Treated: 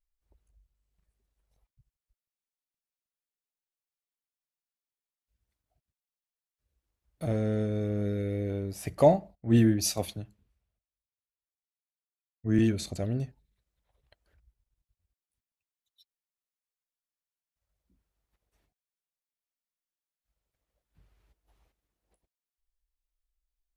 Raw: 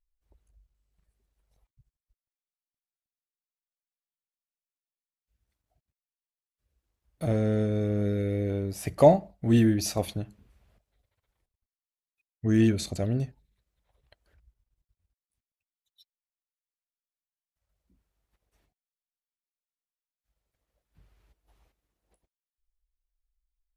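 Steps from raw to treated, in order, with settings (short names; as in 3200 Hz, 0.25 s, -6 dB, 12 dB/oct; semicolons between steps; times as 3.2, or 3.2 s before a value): 9.35–12.59 three-band expander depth 70%; gain -3 dB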